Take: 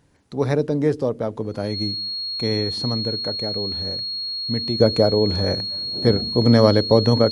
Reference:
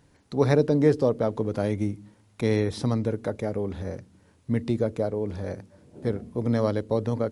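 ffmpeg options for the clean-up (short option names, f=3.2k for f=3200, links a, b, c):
-af "bandreject=f=4.3k:w=30,asetnsamples=n=441:p=0,asendcmd='4.8 volume volume -10dB',volume=0dB"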